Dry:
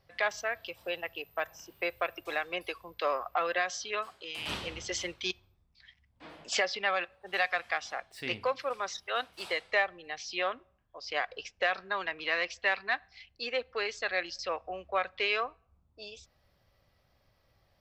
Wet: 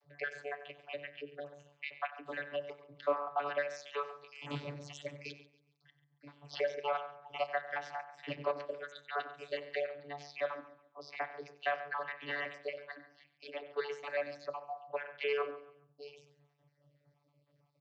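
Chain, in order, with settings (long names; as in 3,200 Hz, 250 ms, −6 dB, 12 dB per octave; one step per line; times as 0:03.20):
time-frequency cells dropped at random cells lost 48%
on a send at −11 dB: low-shelf EQ 200 Hz +11.5 dB + convolution reverb RT60 0.45 s, pre-delay 3 ms
0:12.72–0:13.64: on the sum: transient designer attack −7 dB, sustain −2 dB
slap from a distant wall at 16 metres, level −15 dB
channel vocoder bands 32, saw 144 Hz
repeating echo 139 ms, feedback 34%, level −18 dB
level −2 dB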